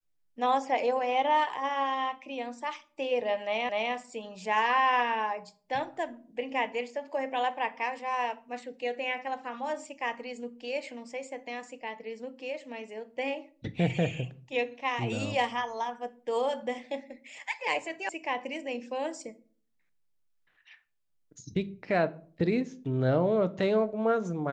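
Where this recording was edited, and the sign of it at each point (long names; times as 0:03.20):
0:03.69: the same again, the last 0.25 s
0:18.09: cut off before it has died away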